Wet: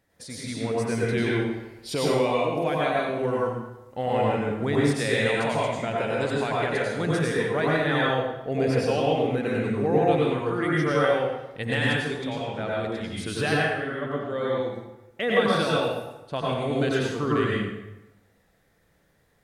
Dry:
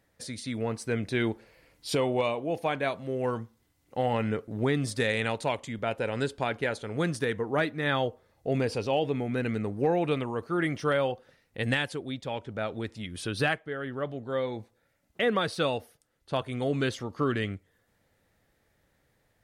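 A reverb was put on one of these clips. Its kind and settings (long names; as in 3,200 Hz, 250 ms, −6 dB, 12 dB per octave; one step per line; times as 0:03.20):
dense smooth reverb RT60 0.99 s, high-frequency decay 0.75×, pre-delay 80 ms, DRR −5 dB
level −1.5 dB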